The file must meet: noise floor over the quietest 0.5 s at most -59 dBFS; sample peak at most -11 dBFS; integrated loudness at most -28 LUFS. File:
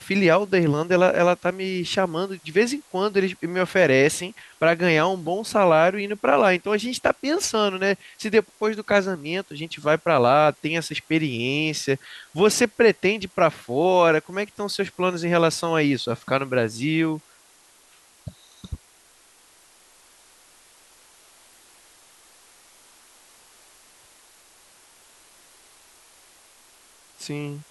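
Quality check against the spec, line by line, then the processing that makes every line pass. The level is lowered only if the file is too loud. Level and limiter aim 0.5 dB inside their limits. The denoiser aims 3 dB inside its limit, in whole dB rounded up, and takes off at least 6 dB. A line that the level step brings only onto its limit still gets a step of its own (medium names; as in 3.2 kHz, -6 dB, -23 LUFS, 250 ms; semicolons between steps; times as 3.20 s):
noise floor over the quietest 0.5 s -55 dBFS: fail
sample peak -4.5 dBFS: fail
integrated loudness -21.5 LUFS: fail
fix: trim -7 dB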